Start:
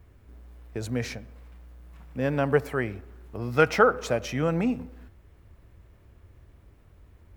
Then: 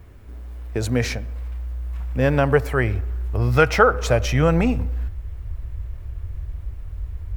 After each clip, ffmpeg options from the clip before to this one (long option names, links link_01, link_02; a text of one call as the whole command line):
ffmpeg -i in.wav -filter_complex "[0:a]asubboost=boost=10:cutoff=73,asplit=2[link_01][link_02];[link_02]alimiter=limit=-16dB:level=0:latency=1:release=434,volume=3dB[link_03];[link_01][link_03]amix=inputs=2:normalize=0,volume=1.5dB" out.wav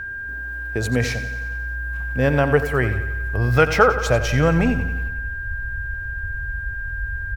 ffmpeg -i in.wav -af "aecho=1:1:90|180|270|360|450|540|630:0.237|0.142|0.0854|0.0512|0.0307|0.0184|0.0111,aeval=exprs='val(0)+0.0398*sin(2*PI*1600*n/s)':channel_layout=same" out.wav